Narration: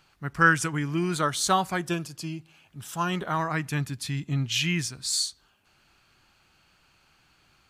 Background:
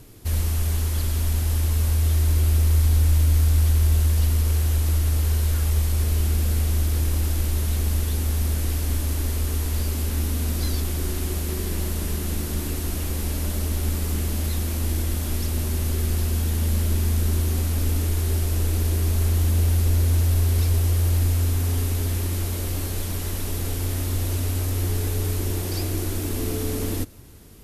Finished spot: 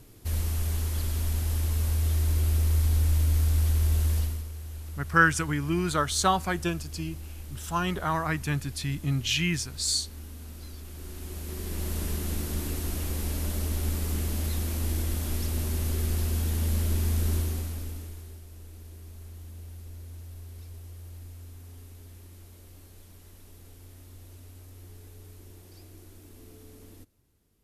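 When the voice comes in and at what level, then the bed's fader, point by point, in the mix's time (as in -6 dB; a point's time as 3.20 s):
4.75 s, -0.5 dB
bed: 4.17 s -5.5 dB
4.50 s -18 dB
10.79 s -18 dB
11.96 s -4.5 dB
17.36 s -4.5 dB
18.42 s -23.5 dB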